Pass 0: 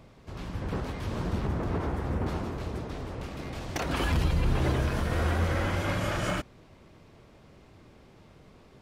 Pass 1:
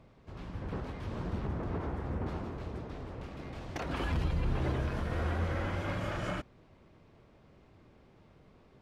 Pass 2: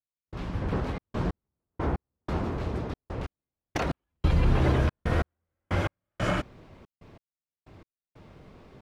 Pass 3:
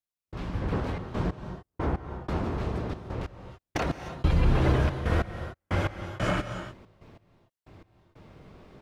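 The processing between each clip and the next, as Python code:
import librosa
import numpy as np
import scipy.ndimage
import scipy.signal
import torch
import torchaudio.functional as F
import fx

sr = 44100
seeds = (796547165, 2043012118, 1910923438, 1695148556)

y1 = fx.lowpass(x, sr, hz=3100.0, slope=6)
y1 = y1 * 10.0 ** (-5.5 / 20.0)
y2 = fx.step_gate(y1, sr, bpm=92, pattern='..xxxx.x...x', floor_db=-60.0, edge_ms=4.5)
y2 = y2 * 10.0 ** (9.0 / 20.0)
y3 = fx.rev_gated(y2, sr, seeds[0], gate_ms=330, shape='rising', drr_db=9.0)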